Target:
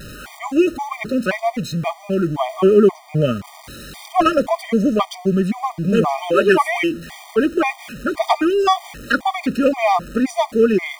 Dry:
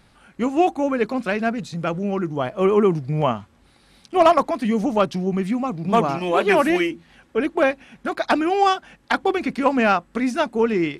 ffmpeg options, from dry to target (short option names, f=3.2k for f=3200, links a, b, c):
-af "aeval=exprs='val(0)+0.5*0.02*sgn(val(0))':c=same,afftfilt=real='re*gt(sin(2*PI*1.9*pts/sr)*(1-2*mod(floor(b*sr/1024/620),2)),0)':imag='im*gt(sin(2*PI*1.9*pts/sr)*(1-2*mod(floor(b*sr/1024/620),2)),0)':win_size=1024:overlap=0.75,volume=5dB"